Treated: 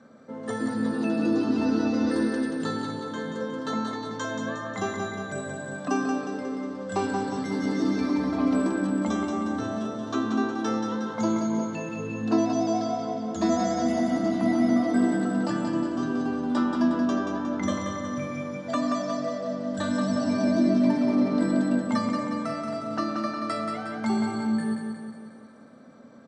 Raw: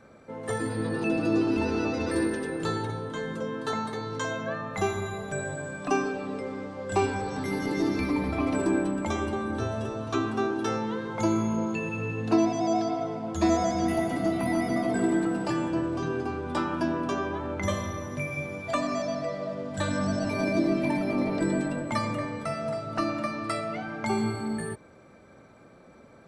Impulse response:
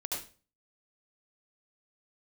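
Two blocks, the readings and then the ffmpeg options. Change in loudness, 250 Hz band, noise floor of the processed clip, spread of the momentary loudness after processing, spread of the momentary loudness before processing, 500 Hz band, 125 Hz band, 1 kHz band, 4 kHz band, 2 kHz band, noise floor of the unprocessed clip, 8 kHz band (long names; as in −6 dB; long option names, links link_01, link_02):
+2.0 dB, +4.0 dB, −43 dBFS, 9 LU, 8 LU, −0.5 dB, −2.5 dB, 0.0 dB, +0.5 dB, −1.5 dB, −53 dBFS, −0.5 dB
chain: -af "highpass=160,equalizer=frequency=240:width_type=q:width=4:gain=10,equalizer=frequency=370:width_type=q:width=4:gain=-6,equalizer=frequency=840:width_type=q:width=4:gain=-3,equalizer=frequency=2400:width_type=q:width=4:gain=-10,lowpass=frequency=7700:width=0.5412,lowpass=frequency=7700:width=1.3066,aecho=1:1:180|360|540|720|900|1080|1260:0.531|0.292|0.161|0.0883|0.0486|0.0267|0.0147"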